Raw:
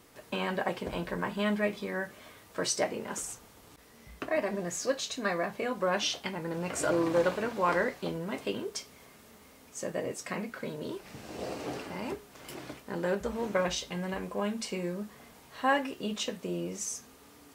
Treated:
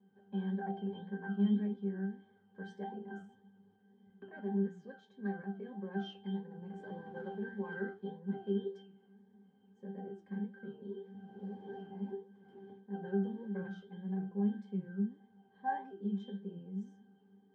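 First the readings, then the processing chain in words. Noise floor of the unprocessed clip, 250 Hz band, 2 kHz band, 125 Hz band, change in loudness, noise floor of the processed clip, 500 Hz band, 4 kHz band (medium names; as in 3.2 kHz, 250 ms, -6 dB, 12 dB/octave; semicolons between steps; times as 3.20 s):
-56 dBFS, -1.5 dB, -14.5 dB, -1.5 dB, -7.0 dB, -68 dBFS, -11.0 dB, -20.5 dB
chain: resonant low shelf 120 Hz -13 dB, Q 3; hum notches 60/120/180 Hz; pitch-class resonator G, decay 0.32 s; flange 1.7 Hz, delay 3.6 ms, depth 7.1 ms, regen +78%; tape noise reduction on one side only decoder only; trim +8 dB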